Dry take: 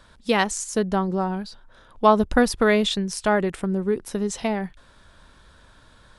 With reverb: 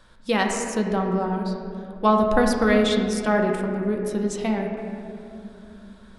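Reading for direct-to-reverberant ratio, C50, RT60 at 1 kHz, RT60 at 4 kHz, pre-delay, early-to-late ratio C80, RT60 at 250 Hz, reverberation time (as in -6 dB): 1.5 dB, 3.0 dB, 2.3 s, 1.5 s, 4 ms, 4.5 dB, 4.3 s, 2.8 s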